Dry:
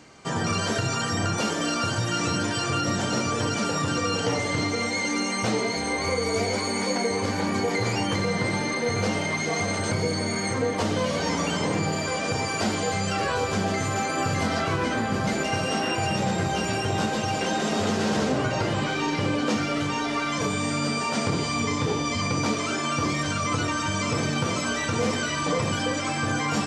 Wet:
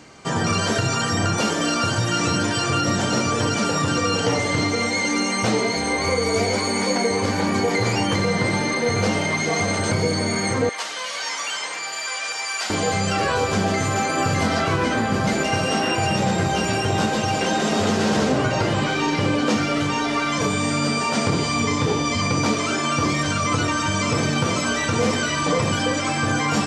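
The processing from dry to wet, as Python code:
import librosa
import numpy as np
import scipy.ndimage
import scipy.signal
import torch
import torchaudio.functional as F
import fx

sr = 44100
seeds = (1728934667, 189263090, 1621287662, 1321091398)

y = fx.highpass(x, sr, hz=1300.0, slope=12, at=(10.69, 12.7))
y = y * 10.0 ** (4.5 / 20.0)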